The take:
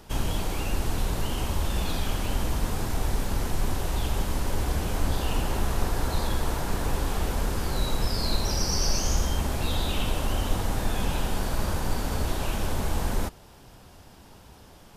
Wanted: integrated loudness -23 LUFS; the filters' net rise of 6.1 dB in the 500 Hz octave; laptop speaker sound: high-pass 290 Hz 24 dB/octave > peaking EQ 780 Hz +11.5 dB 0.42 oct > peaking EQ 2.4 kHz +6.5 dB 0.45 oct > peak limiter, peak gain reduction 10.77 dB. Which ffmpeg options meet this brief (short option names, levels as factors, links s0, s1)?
-af "highpass=f=290:w=0.5412,highpass=f=290:w=1.3066,equalizer=f=500:t=o:g=5,equalizer=f=780:t=o:w=0.42:g=11.5,equalizer=f=2400:t=o:w=0.45:g=6.5,volume=3.55,alimiter=limit=0.188:level=0:latency=1"